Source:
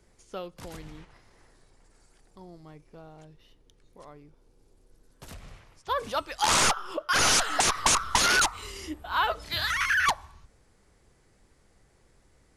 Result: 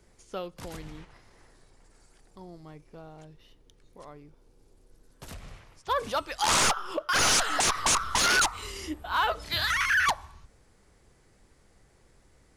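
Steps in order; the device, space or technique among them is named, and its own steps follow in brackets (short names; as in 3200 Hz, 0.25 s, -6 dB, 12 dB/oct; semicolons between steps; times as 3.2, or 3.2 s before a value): limiter into clipper (limiter -18 dBFS, peak gain reduction 5.5 dB; hard clip -20 dBFS, distortion -26 dB); gain +1.5 dB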